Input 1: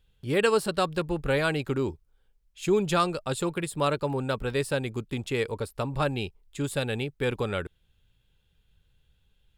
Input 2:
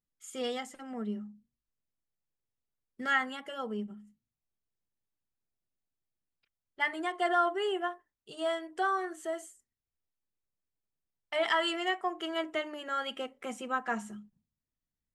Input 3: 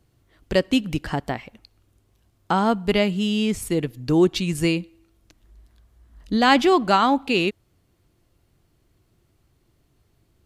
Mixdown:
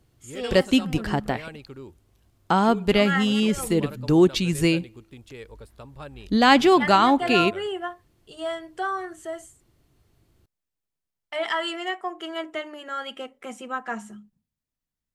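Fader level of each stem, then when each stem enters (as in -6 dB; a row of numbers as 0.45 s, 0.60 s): -13.5 dB, +2.0 dB, +0.5 dB; 0.00 s, 0.00 s, 0.00 s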